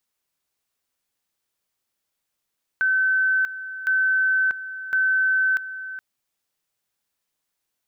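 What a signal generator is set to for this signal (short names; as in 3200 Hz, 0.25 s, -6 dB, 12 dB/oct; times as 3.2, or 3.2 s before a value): two-level tone 1530 Hz -17 dBFS, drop 13.5 dB, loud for 0.64 s, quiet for 0.42 s, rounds 3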